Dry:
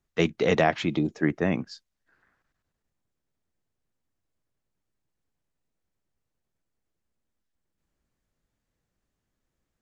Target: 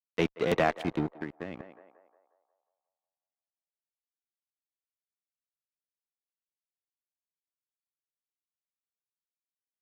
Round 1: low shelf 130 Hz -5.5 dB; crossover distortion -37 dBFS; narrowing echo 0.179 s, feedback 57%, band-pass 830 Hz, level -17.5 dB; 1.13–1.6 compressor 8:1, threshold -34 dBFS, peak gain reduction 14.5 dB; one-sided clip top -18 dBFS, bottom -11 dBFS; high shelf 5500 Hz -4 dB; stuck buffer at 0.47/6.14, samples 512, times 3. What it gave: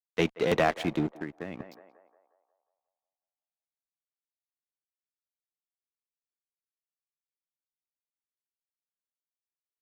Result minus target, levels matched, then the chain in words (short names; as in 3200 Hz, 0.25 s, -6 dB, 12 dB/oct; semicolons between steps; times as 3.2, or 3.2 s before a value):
crossover distortion: distortion -5 dB; 8000 Hz band +2.5 dB
low shelf 130 Hz -5.5 dB; crossover distortion -31 dBFS; narrowing echo 0.179 s, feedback 57%, band-pass 830 Hz, level -17.5 dB; 1.13–1.6 compressor 8:1, threshold -34 dBFS, peak gain reduction 13.5 dB; one-sided clip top -18 dBFS, bottom -11 dBFS; high shelf 5500 Hz -13 dB; stuck buffer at 0.47/6.14, samples 512, times 3